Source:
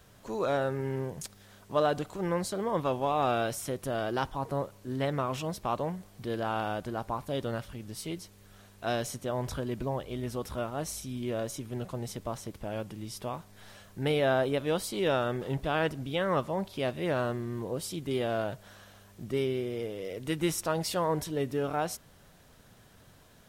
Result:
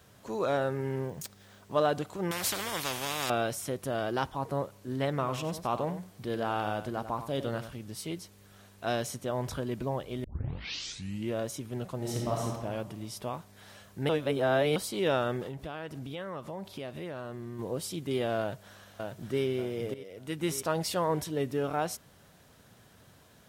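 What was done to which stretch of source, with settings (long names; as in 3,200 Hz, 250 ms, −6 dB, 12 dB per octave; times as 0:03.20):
0:01.07–0:01.72: bad sample-rate conversion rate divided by 2×, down filtered, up hold
0:02.31–0:03.30: every bin compressed towards the loudest bin 4 to 1
0:05.11–0:07.79: single-tap delay 93 ms −11 dB
0:10.24: tape start 1.09 s
0:11.96–0:12.44: thrown reverb, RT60 1.5 s, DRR −3.5 dB
0:14.09–0:14.76: reverse
0:15.46–0:17.59: downward compressor, threshold −35 dBFS
0:18.40–0:19.44: delay throw 590 ms, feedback 35%, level −4 dB
0:19.94–0:20.67: fade in, from −14.5 dB
whole clip: high-pass filter 64 Hz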